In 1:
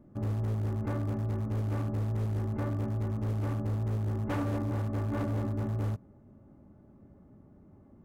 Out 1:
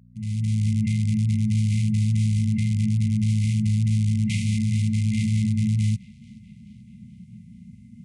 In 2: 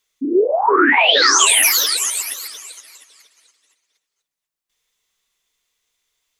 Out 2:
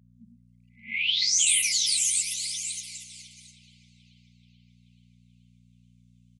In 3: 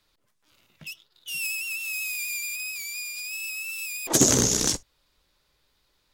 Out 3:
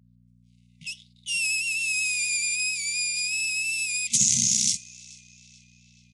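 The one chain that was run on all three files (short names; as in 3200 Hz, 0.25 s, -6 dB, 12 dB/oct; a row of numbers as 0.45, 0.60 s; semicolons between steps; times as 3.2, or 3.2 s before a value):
opening faded in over 0.70 s; compressor 2:1, threshold -30 dBFS; gate -58 dBFS, range -15 dB; high shelf 3100 Hz +10.5 dB; hum 60 Hz, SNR 26 dB; FFT band-reject 240–2000 Hz; HPF 120 Hz 12 dB/oct; narrowing echo 0.432 s, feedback 62%, band-pass 2800 Hz, level -21 dB; downsampling 22050 Hz; harmonic-percussive split percussive -5 dB; match loudness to -23 LUFS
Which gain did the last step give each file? +15.0, -1.5, +2.5 dB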